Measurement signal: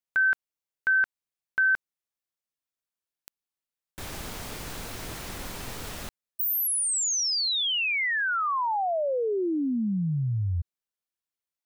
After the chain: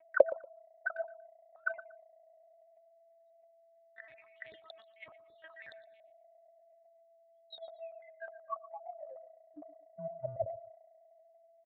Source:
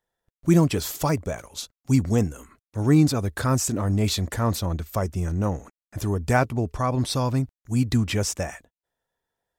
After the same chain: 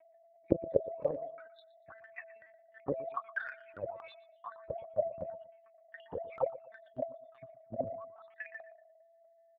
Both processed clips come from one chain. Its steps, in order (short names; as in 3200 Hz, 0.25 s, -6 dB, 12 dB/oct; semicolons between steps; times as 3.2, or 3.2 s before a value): random spectral dropouts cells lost 77%; whine 660 Hz -38 dBFS; LPC vocoder at 8 kHz pitch kept; bell 96 Hz +9.5 dB 2 oct; auto-wah 540–2200 Hz, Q 11, down, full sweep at -17.5 dBFS; in parallel at 0 dB: compressor, threshold -54 dBFS; on the sum: transient shaper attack +7 dB, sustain +11 dB; on a send: feedback echo 0.118 s, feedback 24%, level -17.5 dB; on the sum: dynamic EQ 1500 Hz, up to -4 dB, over -49 dBFS, Q 2.4; gain -1.5 dB